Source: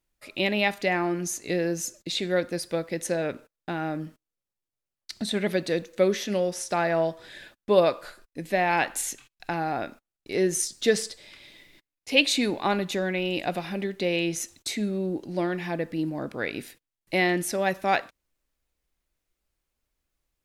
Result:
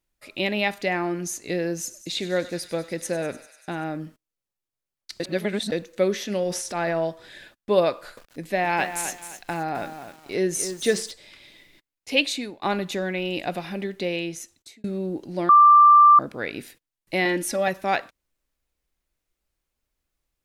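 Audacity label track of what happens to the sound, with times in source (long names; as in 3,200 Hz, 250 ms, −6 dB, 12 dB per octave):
1.770000	3.840000	feedback echo with a high-pass in the loop 98 ms, feedback 82%, high-pass 1,000 Hz, level −15 dB
5.200000	5.720000	reverse
6.430000	7.030000	transient designer attack −7 dB, sustain +7 dB
7.910000	11.110000	feedback echo at a low word length 261 ms, feedback 35%, word length 7 bits, level −9 dB
12.140000	12.620000	fade out, to −22.5 dB
13.990000	14.840000	fade out
15.490000	16.190000	beep over 1,180 Hz −9 dBFS
17.250000	17.680000	comb filter 3.6 ms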